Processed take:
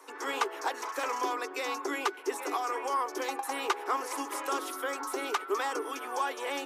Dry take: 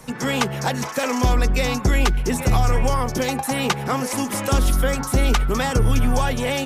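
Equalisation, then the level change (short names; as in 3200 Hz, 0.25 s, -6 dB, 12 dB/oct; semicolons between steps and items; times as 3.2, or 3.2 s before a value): rippled Chebyshev high-pass 280 Hz, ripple 9 dB; -3.5 dB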